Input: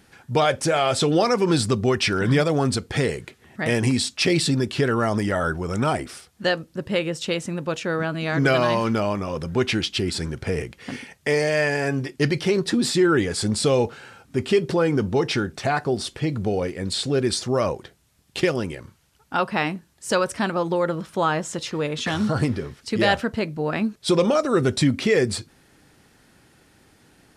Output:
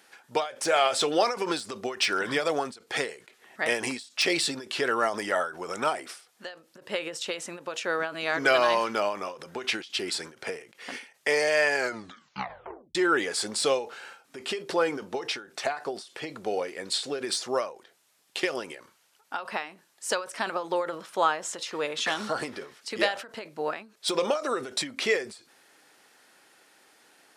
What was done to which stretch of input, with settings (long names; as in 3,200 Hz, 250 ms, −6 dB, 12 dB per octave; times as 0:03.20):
0:11.73: tape stop 1.22 s
whole clip: high-pass filter 530 Hz 12 dB per octave; de-essing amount 45%; every ending faded ahead of time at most 140 dB per second